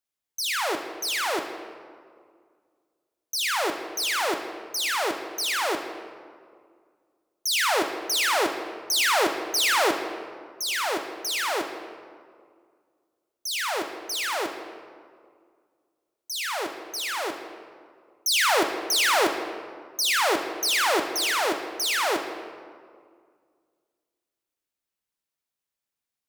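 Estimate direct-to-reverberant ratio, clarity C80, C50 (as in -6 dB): 5.0 dB, 8.0 dB, 6.5 dB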